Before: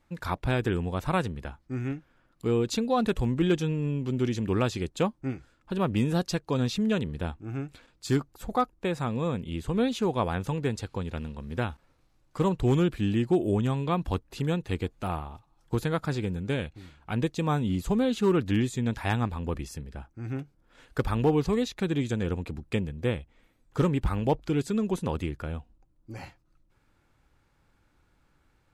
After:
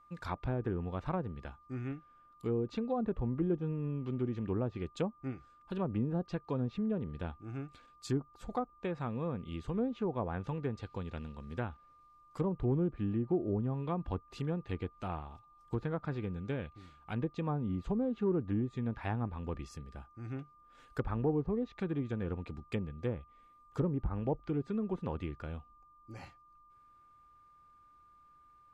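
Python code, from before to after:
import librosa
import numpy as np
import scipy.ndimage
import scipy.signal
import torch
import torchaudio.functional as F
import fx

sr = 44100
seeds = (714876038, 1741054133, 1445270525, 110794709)

y = x + 10.0 ** (-52.0 / 20.0) * np.sin(2.0 * np.pi * 1200.0 * np.arange(len(x)) / sr)
y = fx.env_lowpass_down(y, sr, base_hz=740.0, full_db=-21.0)
y = F.gain(torch.from_numpy(y), -7.5).numpy()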